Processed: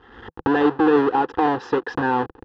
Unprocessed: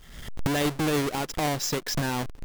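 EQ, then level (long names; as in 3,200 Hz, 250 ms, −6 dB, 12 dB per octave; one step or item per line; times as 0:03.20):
loudspeaker in its box 110–2,800 Hz, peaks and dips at 160 Hz +6 dB, 330 Hz +3 dB, 500 Hz +9 dB, 820 Hz +8 dB, 1,700 Hz +6 dB, 2,400 Hz +9 dB
phaser with its sweep stopped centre 610 Hz, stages 6
+7.5 dB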